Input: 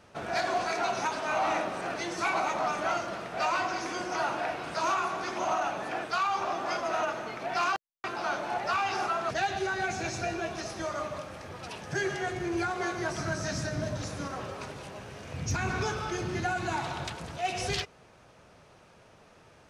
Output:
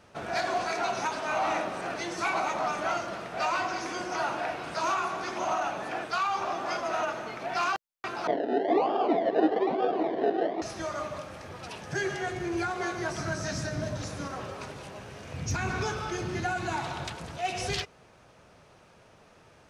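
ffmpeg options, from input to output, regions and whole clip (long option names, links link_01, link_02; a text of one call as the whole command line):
ffmpeg -i in.wav -filter_complex "[0:a]asettb=1/sr,asplit=3[link_01][link_02][link_03];[link_01]atrim=end=8.274[link_04];[link_02]atrim=start=8.27:end=10.62,asetpts=PTS-STARTPTS,afade=type=in:duration=0.004:curve=qsin,afade=type=out:start_time=2.346:duration=0.004:curve=qsin,acrusher=samples=31:mix=1:aa=0.000001:lfo=1:lforange=18.6:lforate=1.1,highpass=frequency=220:width=0.5412,highpass=frequency=220:width=1.3066,equalizer=frequency=300:width_type=q:width=4:gain=7,equalizer=frequency=430:width_type=q:width=4:gain=7,equalizer=frequency=680:width_type=q:width=4:gain=9,equalizer=frequency=1400:width_type=q:width=4:gain=-5,equalizer=frequency=2600:width_type=q:width=4:gain=-10,lowpass=frequency=3200:width=0.5412,lowpass=frequency=3200:width=1.3066,aecho=1:1:567:0.282,atrim=end_sample=103635[link_05];[link_03]atrim=start=10.616[link_06];[link_04][link_05]acrossfade=duration=0.004:curve1=hsin:curve2=qsin[link_07];[link_07][link_06]acrossfade=duration=0.004:curve1=qsin:curve2=hsin" out.wav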